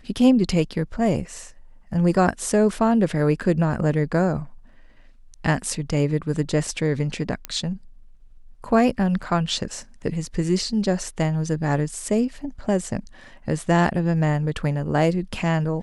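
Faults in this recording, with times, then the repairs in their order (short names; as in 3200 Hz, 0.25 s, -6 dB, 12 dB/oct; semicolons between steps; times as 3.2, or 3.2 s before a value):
7.45 pop -11 dBFS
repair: de-click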